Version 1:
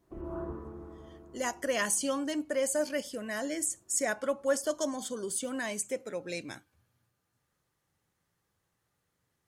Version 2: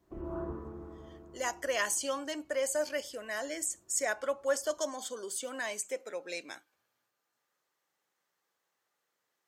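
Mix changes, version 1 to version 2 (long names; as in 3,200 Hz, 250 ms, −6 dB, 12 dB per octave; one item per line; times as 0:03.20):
speech: add high-pass filter 460 Hz 12 dB per octave
master: add parametric band 10,000 Hz −9.5 dB 0.23 octaves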